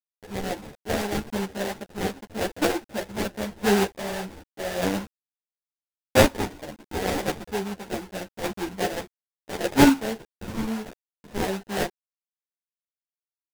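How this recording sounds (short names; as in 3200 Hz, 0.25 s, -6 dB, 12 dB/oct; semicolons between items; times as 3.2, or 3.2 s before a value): a quantiser's noise floor 8-bit, dither none; chopped level 0.83 Hz, depth 60%, duty 20%; aliases and images of a low sample rate 1200 Hz, jitter 20%; a shimmering, thickened sound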